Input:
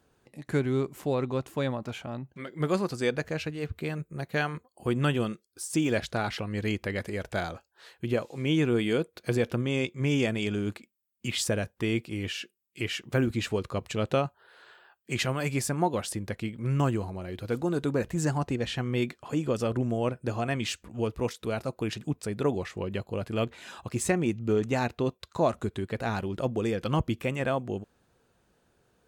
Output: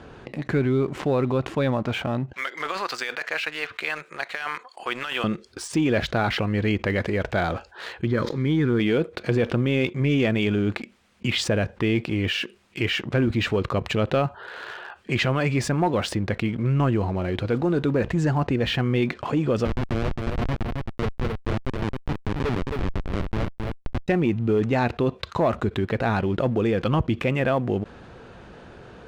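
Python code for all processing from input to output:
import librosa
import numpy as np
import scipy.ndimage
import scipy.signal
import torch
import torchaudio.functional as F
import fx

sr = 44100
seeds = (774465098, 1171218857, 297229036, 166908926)

y = fx.chain(x, sr, fx.highpass(hz=1200.0, slope=12),
    fx.over_compress(threshold_db=-40.0, ratio=-1.0), at=(2.33, 5.24))
y = fx.chain(y, sr, fx.fixed_phaser(hz=2700.0, stages=6),
    fx.sustainer(db_per_s=110.0), at=(8.07, 8.8))
y = fx.chain(y, sr, fx.cheby1_bandpass(low_hz=140.0, high_hz=2000.0, order=3),
    fx.schmitt(flips_db=-27.0),
    fx.echo_single(ms=268, db=-7.0), at=(19.65, 24.08))
y = scipy.signal.sosfilt(scipy.signal.butter(2, 3300.0, 'lowpass', fs=sr, output='sos'), y)
y = fx.leveller(y, sr, passes=1)
y = fx.env_flatten(y, sr, amount_pct=50)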